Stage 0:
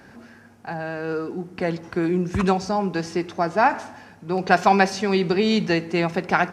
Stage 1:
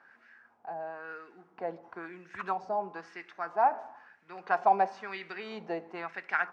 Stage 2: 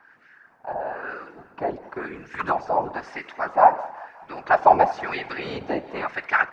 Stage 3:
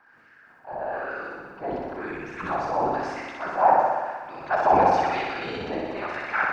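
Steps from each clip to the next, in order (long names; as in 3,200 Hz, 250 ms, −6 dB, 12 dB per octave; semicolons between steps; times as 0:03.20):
auto-filter band-pass sine 1 Hz 680–1,900 Hz; level −4.5 dB
feedback echo with a high-pass in the loop 188 ms, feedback 64%, high-pass 540 Hz, level −18.5 dB; random phases in short frames; automatic gain control gain up to 5 dB; level +4.5 dB
notch filter 1,900 Hz, Q 27; transient designer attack −5 dB, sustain +7 dB; on a send: flutter between parallel walls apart 10.5 metres, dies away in 1.3 s; on the sum: level −3.5 dB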